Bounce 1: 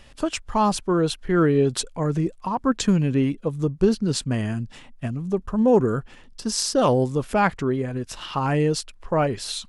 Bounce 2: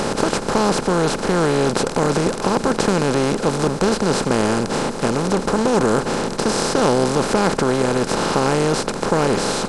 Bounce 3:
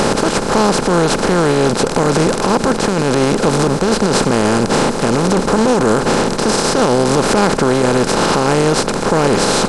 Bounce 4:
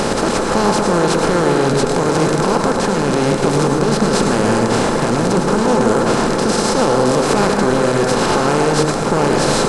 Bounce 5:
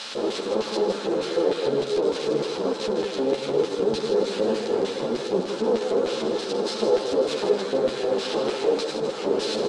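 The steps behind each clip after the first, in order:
spectral levelling over time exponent 0.2; trim -5.5 dB
peak limiter -11.5 dBFS, peak gain reduction 9.5 dB; trim +8 dB
reverberation RT60 1.3 s, pre-delay 92 ms, DRR 1.5 dB; trim -3.5 dB
LFO band-pass square 3.3 Hz 440–3600 Hz; delay 158 ms -7 dB; three-phase chorus

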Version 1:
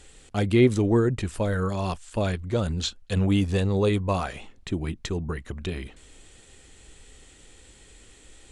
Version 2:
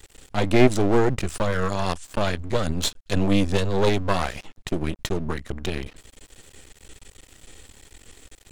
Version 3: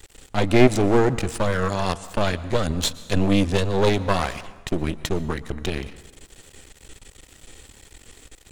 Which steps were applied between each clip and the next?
half-wave rectifier; dynamic bell 6.1 kHz, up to +3 dB, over -53 dBFS, Q 0.73; trim +6.5 dB
plate-style reverb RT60 1.2 s, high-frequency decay 0.65×, pre-delay 105 ms, DRR 16.5 dB; trim +1.5 dB

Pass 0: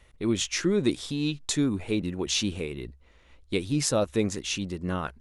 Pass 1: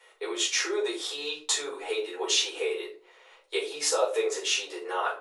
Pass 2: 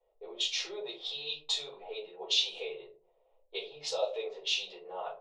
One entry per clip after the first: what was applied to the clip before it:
compression 3:1, threshold -28 dBFS, peak gain reduction 7.5 dB; elliptic high-pass 430 Hz, stop band 50 dB; simulated room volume 190 m³, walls furnished, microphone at 4.5 m; trim -1 dB
FFT filter 130 Hz 0 dB, 190 Hz +7 dB, 280 Hz -21 dB, 640 Hz -1 dB, 1.6 kHz -17 dB, 2.6 kHz +1 dB, 3.8 kHz +9 dB, 9.1 kHz -10 dB, 13 kHz -5 dB; level-controlled noise filter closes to 520 Hz, open at -21.5 dBFS; tilt EQ -2.5 dB/octave; trim -3.5 dB

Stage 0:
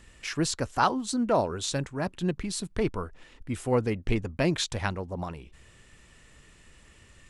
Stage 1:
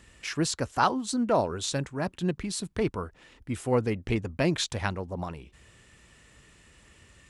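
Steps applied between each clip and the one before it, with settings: high-pass 45 Hz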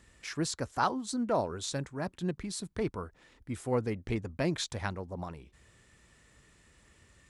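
peaking EQ 2.8 kHz -5 dB 0.36 oct; trim -5 dB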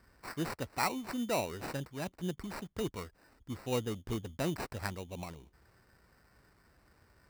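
sample-rate reducer 3.3 kHz, jitter 0%; trim -3.5 dB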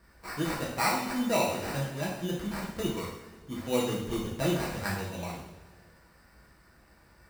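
two-slope reverb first 0.75 s, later 2.4 s, from -18 dB, DRR -5.5 dB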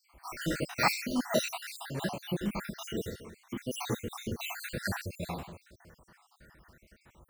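random holes in the spectrogram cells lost 62%; trim +2.5 dB

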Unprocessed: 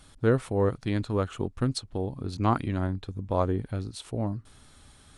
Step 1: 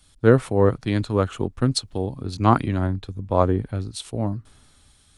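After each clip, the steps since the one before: three bands expanded up and down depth 40%; trim +6 dB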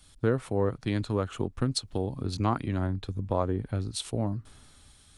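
compression 2.5:1, threshold -27 dBFS, peak gain reduction 12.5 dB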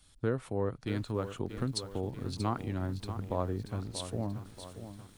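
bit-crushed delay 633 ms, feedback 55%, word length 8-bit, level -10.5 dB; trim -5.5 dB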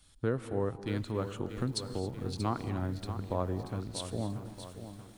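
reverberation, pre-delay 3 ms, DRR 12 dB

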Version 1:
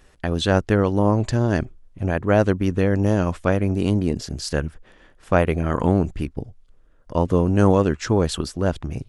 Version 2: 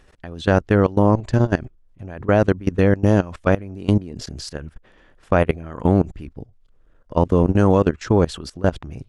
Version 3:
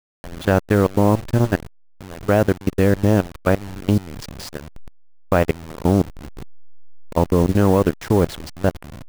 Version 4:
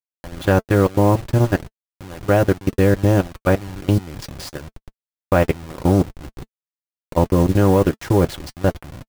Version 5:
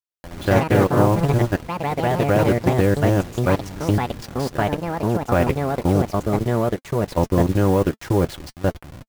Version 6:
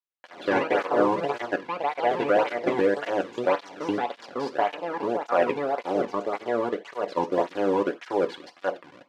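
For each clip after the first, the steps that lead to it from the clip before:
treble shelf 7.2 kHz -8.5 dB; level held to a coarse grid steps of 19 dB; trim +5 dB
send-on-delta sampling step -28 dBFS
comb of notches 220 Hz; trim +2 dB
ever faster or slower copies 109 ms, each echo +3 st, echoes 3; trim -3 dB
band-pass 380–3700 Hz; reverberation, pre-delay 3 ms, DRR 8.5 dB; cancelling through-zero flanger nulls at 1.8 Hz, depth 1.7 ms

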